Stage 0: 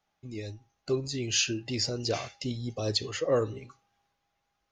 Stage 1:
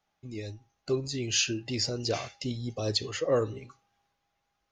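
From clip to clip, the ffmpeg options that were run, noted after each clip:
-af anull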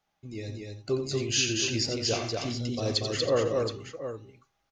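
-af "aecho=1:1:87|236|322|721:0.355|0.708|0.168|0.299"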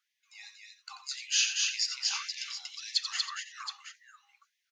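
-af "afftfilt=real='re*gte(b*sr/1024,710*pow(1700/710,0.5+0.5*sin(2*PI*1.8*pts/sr)))':imag='im*gte(b*sr/1024,710*pow(1700/710,0.5+0.5*sin(2*PI*1.8*pts/sr)))':win_size=1024:overlap=0.75"

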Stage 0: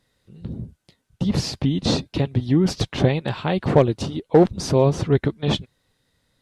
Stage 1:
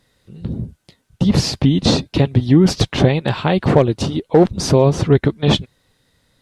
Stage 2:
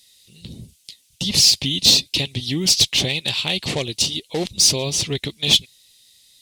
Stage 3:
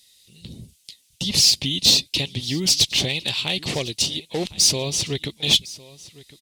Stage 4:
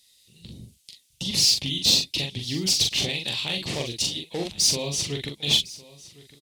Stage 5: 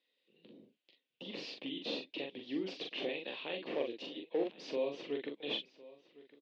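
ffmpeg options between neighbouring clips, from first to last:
-af "alimiter=limit=0.335:level=0:latency=1:release=281,volume=2.24"
-af "aexciter=amount=8:drive=9.4:freq=2300,volume=0.224"
-af "aecho=1:1:1057:0.1,volume=0.794"
-filter_complex "[0:a]asplit=2[s0][s1];[s1]adelay=42,volume=0.631[s2];[s0][s2]amix=inputs=2:normalize=0,volume=0.562"
-af "highpass=f=280:w=0.5412,highpass=f=280:w=1.3066,equalizer=f=290:t=q:w=4:g=3,equalizer=f=500:t=q:w=4:g=6,equalizer=f=840:t=q:w=4:g=-4,equalizer=f=1300:t=q:w=4:g=-4,equalizer=f=2100:t=q:w=4:g=-6,lowpass=f=2400:w=0.5412,lowpass=f=2400:w=1.3066,volume=0.531"

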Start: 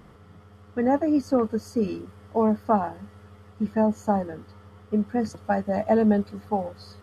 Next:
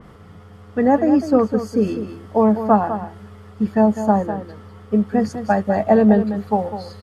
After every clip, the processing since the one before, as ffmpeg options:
-filter_complex "[0:a]asplit=2[s0][s1];[s1]aecho=0:1:201:0.299[s2];[s0][s2]amix=inputs=2:normalize=0,adynamicequalizer=threshold=0.00501:dfrequency=3500:dqfactor=0.7:tfrequency=3500:tqfactor=0.7:attack=5:release=100:ratio=0.375:range=3:mode=cutabove:tftype=highshelf,volume=2.11"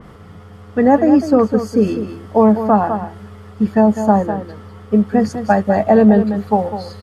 -af "alimiter=level_in=1.78:limit=0.891:release=50:level=0:latency=1,volume=0.891"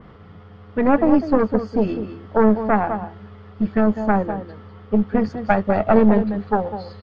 -af "aeval=exprs='0.794*(cos(1*acos(clip(val(0)/0.794,-1,1)))-cos(1*PI/2))+0.316*(cos(2*acos(clip(val(0)/0.794,-1,1)))-cos(2*PI/2))':c=same,lowpass=f=4300:w=0.5412,lowpass=f=4300:w=1.3066,volume=0.596"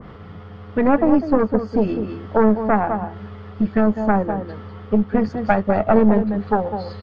-filter_complex "[0:a]asplit=2[s0][s1];[s1]acompressor=threshold=0.0501:ratio=6,volume=1.33[s2];[s0][s2]amix=inputs=2:normalize=0,adynamicequalizer=threshold=0.0224:dfrequency=2100:dqfactor=0.7:tfrequency=2100:tqfactor=0.7:attack=5:release=100:ratio=0.375:range=3:mode=cutabove:tftype=highshelf,volume=0.794"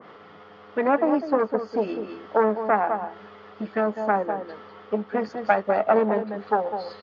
-af "highpass=400,aresample=16000,aresample=44100,volume=0.841"

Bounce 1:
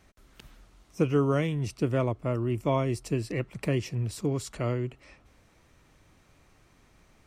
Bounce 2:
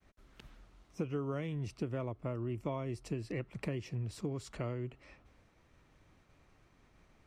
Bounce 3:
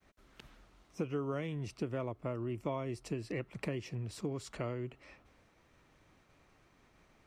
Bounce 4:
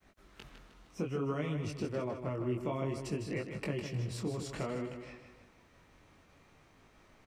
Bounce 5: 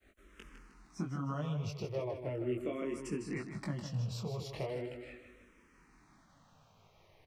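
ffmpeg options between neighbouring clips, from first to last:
-af "agate=range=0.0224:threshold=0.00126:ratio=3:detection=peak,highshelf=f=6500:g=-11.5,acompressor=threshold=0.0282:ratio=4,volume=0.668"
-af "lowshelf=f=150:g=-7,volume=1.26"
-filter_complex "[0:a]asplit=2[s0][s1];[s1]alimiter=level_in=2.24:limit=0.0631:level=0:latency=1:release=252,volume=0.447,volume=1[s2];[s0][s2]amix=inputs=2:normalize=0,flanger=delay=19:depth=4.9:speed=0.59,aecho=1:1:155|310|465|620|775:0.398|0.175|0.0771|0.0339|0.0149"
-filter_complex "[0:a]asplit=2[s0][s1];[s1]afreqshift=-0.39[s2];[s0][s2]amix=inputs=2:normalize=1,volume=1.12"

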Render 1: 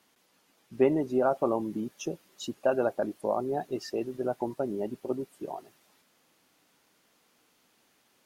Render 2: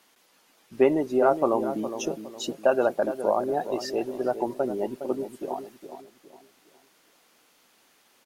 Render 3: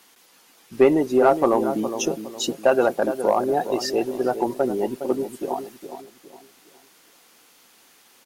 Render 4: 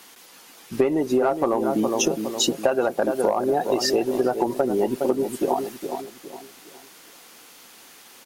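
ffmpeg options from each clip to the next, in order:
-filter_complex "[0:a]equalizer=f=100:w=0.45:g=-9,asplit=2[s0][s1];[s1]adelay=412,lowpass=f=1000:p=1,volume=0.355,asplit=2[s2][s3];[s3]adelay=412,lowpass=f=1000:p=1,volume=0.38,asplit=2[s4][s5];[s5]adelay=412,lowpass=f=1000:p=1,volume=0.38,asplit=2[s6][s7];[s7]adelay=412,lowpass=f=1000:p=1,volume=0.38[s8];[s2][s4][s6][s8]amix=inputs=4:normalize=0[s9];[s0][s9]amix=inputs=2:normalize=0,volume=2"
-filter_complex "[0:a]highshelf=f=4600:g=4.5,bandreject=f=610:w=12,asplit=2[s0][s1];[s1]asoftclip=type=hard:threshold=0.141,volume=0.562[s2];[s0][s2]amix=inputs=2:normalize=0,volume=1.19"
-af "acompressor=threshold=0.0631:ratio=12,volume=2.24"

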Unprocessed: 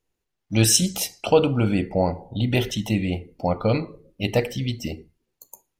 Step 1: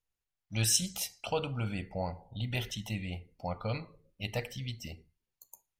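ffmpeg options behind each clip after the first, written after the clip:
-af "equalizer=f=330:w=0.93:g=-12,volume=0.355"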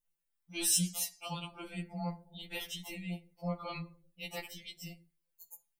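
-af "aexciter=amount=1:drive=9.6:freq=8400,afftfilt=real='re*2.83*eq(mod(b,8),0)':imag='im*2.83*eq(mod(b,8),0)':win_size=2048:overlap=0.75"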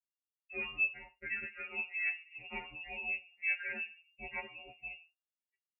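-af "lowpass=f=2400:t=q:w=0.5098,lowpass=f=2400:t=q:w=0.6013,lowpass=f=2400:t=q:w=0.9,lowpass=f=2400:t=q:w=2.563,afreqshift=-2800,agate=range=0.0224:threshold=0.00126:ratio=3:detection=peak,volume=1.26"

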